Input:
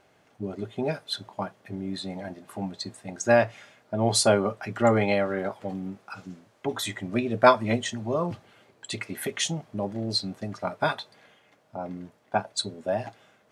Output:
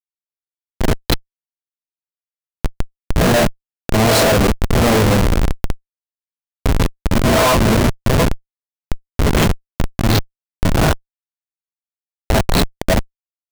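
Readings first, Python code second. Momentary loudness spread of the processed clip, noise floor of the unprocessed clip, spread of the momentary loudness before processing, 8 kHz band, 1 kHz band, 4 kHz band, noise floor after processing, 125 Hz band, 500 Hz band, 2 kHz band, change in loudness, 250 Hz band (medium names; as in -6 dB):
15 LU, -63 dBFS, 17 LU, +8.0 dB, +7.0 dB, +8.5 dB, under -85 dBFS, +15.5 dB, +6.5 dB, +9.0 dB, +11.0 dB, +11.0 dB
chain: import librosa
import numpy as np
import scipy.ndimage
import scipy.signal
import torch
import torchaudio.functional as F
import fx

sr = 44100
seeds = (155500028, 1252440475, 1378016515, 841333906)

y = fx.spec_swells(x, sr, rise_s=0.81)
y = fx.rev_double_slope(y, sr, seeds[0], early_s=0.25, late_s=4.3, knee_db=-22, drr_db=-6.0)
y = fx.schmitt(y, sr, flips_db=-13.0)
y = F.gain(torch.from_numpy(y), 6.5).numpy()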